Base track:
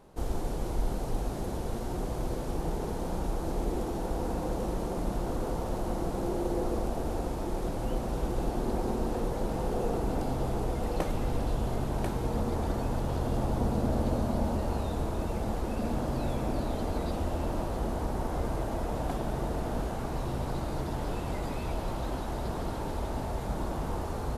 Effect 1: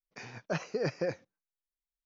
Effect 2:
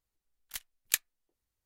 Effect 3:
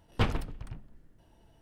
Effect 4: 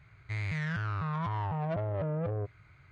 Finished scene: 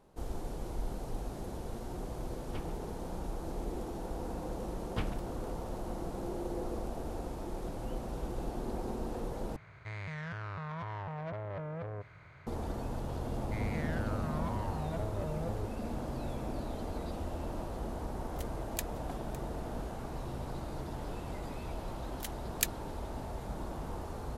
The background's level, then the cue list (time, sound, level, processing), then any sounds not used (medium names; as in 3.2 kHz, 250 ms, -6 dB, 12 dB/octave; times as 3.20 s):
base track -7 dB
2.34 s: add 3 -18 dB
4.77 s: add 3 -9.5 dB
9.56 s: replace with 4 -9 dB + spectral levelling over time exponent 0.6
13.22 s: add 4 -6.5 dB
17.85 s: add 2 -10.5 dB + delay 558 ms -17.5 dB
21.69 s: add 2 -3 dB
not used: 1